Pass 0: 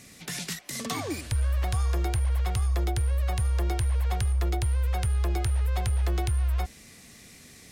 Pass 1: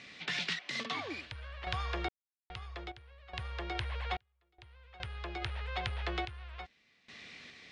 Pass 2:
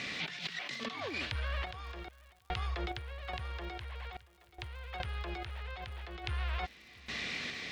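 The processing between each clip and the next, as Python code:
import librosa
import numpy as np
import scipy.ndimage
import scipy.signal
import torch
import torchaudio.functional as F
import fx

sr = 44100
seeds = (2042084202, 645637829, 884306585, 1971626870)

y1 = scipy.signal.sosfilt(scipy.signal.butter(4, 3500.0, 'lowpass', fs=sr, output='sos'), x)
y1 = fx.tilt_eq(y1, sr, slope=3.5)
y1 = fx.tremolo_random(y1, sr, seeds[0], hz=2.4, depth_pct=100)
y1 = y1 * 10.0 ** (1.0 / 20.0)
y2 = fx.over_compress(y1, sr, threshold_db=-46.0, ratio=-1.0)
y2 = fx.dmg_crackle(y2, sr, seeds[1], per_s=140.0, level_db=-58.0)
y2 = y2 + 10.0 ** (-23.5 / 20.0) * np.pad(y2, (int(679 * sr / 1000.0), 0))[:len(y2)]
y2 = y2 * 10.0 ** (6.5 / 20.0)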